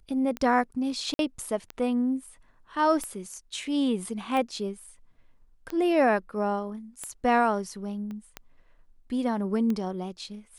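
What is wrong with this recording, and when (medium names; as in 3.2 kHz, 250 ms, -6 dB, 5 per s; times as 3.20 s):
tick 45 rpm -19 dBFS
1.14–1.19 s: dropout 52 ms
8.11 s: pop -28 dBFS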